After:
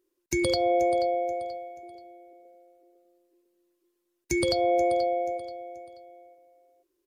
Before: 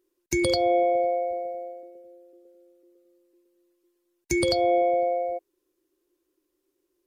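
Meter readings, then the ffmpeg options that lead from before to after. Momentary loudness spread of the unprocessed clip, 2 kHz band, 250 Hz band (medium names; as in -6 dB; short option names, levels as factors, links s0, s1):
15 LU, -1.5 dB, -1.5 dB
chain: -af "aecho=1:1:482|964|1446:0.211|0.0676|0.0216,volume=0.794"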